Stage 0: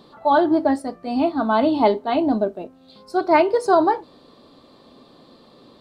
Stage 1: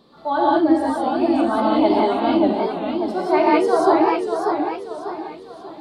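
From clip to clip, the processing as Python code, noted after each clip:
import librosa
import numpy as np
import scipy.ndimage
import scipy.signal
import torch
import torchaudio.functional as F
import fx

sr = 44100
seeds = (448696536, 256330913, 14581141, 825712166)

y = fx.rev_gated(x, sr, seeds[0], gate_ms=210, shape='rising', drr_db=-5.5)
y = fx.echo_warbled(y, sr, ms=591, feedback_pct=40, rate_hz=2.8, cents=143, wet_db=-5.5)
y = y * librosa.db_to_amplitude(-6.0)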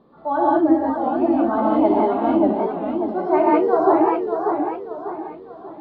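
y = scipy.signal.sosfilt(scipy.signal.butter(2, 1400.0, 'lowpass', fs=sr, output='sos'), x)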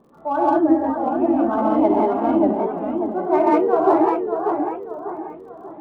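y = fx.wiener(x, sr, points=9)
y = fx.dmg_crackle(y, sr, seeds[1], per_s=38.0, level_db=-49.0)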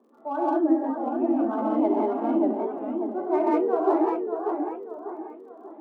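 y = scipy.signal.sosfilt(scipy.signal.cheby1(5, 1.0, 230.0, 'highpass', fs=sr, output='sos'), x)
y = fx.low_shelf(y, sr, hz=460.0, db=6.0)
y = y * librosa.db_to_amplitude(-8.5)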